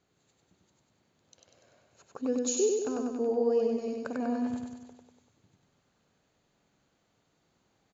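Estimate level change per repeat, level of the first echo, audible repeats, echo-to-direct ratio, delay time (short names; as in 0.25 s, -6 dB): -5.0 dB, -3.0 dB, 7, -1.5 dB, 97 ms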